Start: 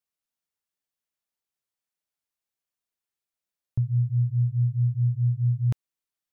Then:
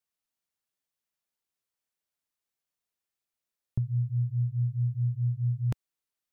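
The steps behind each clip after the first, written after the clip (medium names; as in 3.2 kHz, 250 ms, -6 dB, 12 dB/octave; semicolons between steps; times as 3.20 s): dynamic bell 110 Hz, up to -5 dB, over -32 dBFS, Q 1.1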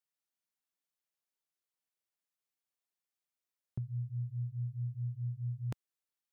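high-pass 160 Hz 6 dB/octave; trim -5 dB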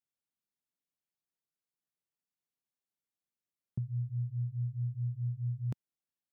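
peaking EQ 170 Hz +11 dB 2.6 oct; trim -7 dB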